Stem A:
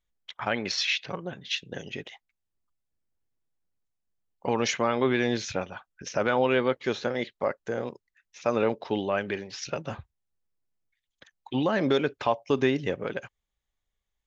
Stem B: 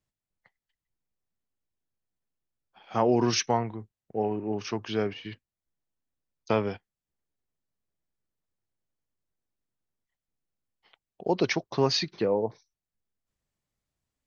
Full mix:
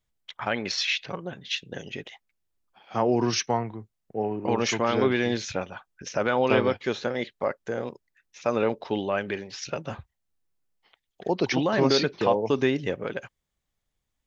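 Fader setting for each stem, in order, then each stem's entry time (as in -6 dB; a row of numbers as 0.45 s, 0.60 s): +0.5 dB, 0.0 dB; 0.00 s, 0.00 s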